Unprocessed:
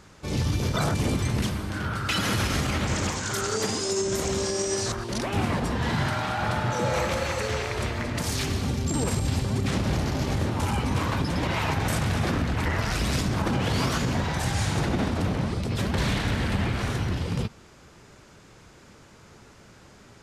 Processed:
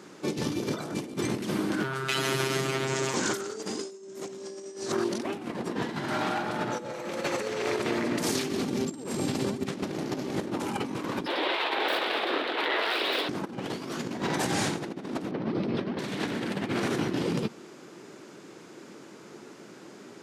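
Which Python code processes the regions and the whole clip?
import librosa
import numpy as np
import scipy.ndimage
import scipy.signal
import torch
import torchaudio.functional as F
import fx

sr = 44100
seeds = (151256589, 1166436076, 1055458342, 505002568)

y = fx.chain(x, sr, fx.robotise(hz=133.0),
    fx.notch_comb(f0_hz=260.0), at=(1.83, 3.14))
y = fx.chain(y, sr, fx.self_delay(depth_ms=0.13),
    fx.highpass(hz=430.0, slope=24),
    fx.high_shelf_res(hz=4900.0, db=-10.5, q=3.0), at=(11.26, 13.29))
y = fx.chain(y, sr, fx.savgol(points=15),
    fx.high_shelf(hz=3600.0, db=-10.5), at=(15.31, 15.99))
y = scipy.signal.sosfilt(scipy.signal.butter(4, 160.0, 'highpass', fs=sr, output='sos'), y)
y = fx.peak_eq(y, sr, hz=340.0, db=10.0, octaves=0.88)
y = fx.over_compress(y, sr, threshold_db=-28.0, ratio=-0.5)
y = y * librosa.db_to_amplitude(-2.0)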